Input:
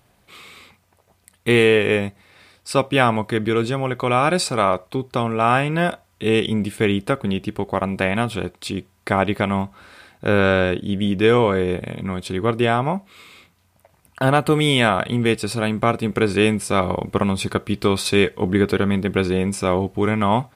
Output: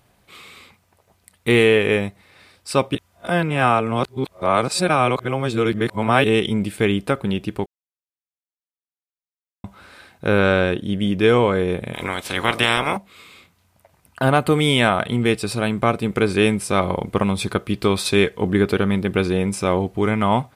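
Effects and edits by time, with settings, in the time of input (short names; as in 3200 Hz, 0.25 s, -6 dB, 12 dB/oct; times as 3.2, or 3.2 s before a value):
2.95–6.24 reverse
7.66–9.64 mute
11.93–12.96 spectral limiter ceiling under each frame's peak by 24 dB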